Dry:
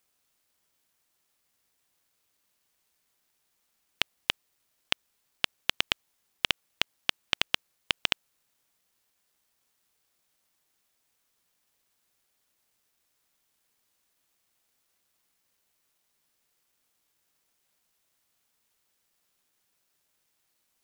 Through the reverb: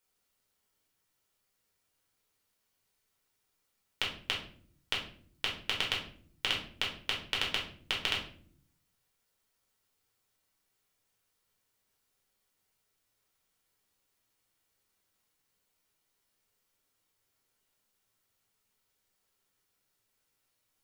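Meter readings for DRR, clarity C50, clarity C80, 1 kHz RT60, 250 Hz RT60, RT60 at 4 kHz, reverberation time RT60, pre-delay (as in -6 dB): -3.0 dB, 6.0 dB, 11.0 dB, 0.40 s, 0.95 s, 0.35 s, 0.55 s, 7 ms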